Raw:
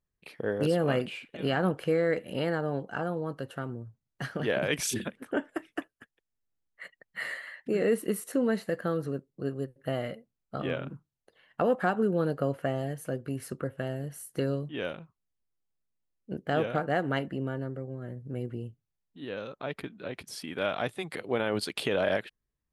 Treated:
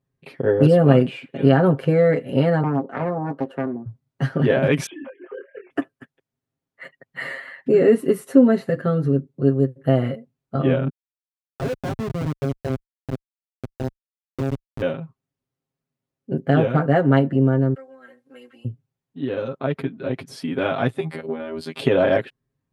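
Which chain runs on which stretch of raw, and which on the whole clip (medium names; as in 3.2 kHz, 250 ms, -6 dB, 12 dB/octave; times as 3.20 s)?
2.63–3.86 s: high-pass 230 Hz 24 dB/octave + treble shelf 2.1 kHz -10 dB + loudspeaker Doppler distortion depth 0.64 ms
4.86–5.71 s: formants replaced by sine waves + compression 4:1, threshold -46 dBFS + doubling 25 ms -4 dB
8.69–9.27 s: low-pass 11 kHz + peaking EQ 780 Hz -5 dB 1.2 oct + hum notches 50/100/150/200/250/300/350 Hz
10.89–14.82 s: CVSD coder 64 kbps + peaking EQ 100 Hz -12 dB 2.4 oct + Schmitt trigger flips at -27 dBFS
17.74–18.65 s: high-pass 1.4 kHz + comb 3.8 ms, depth 84%
21.00–21.79 s: compression 10:1, threshold -32 dBFS + robot voice 80 Hz
whole clip: high-pass 130 Hz; tilt EQ -3 dB/octave; comb 7.5 ms, depth 88%; trim +5.5 dB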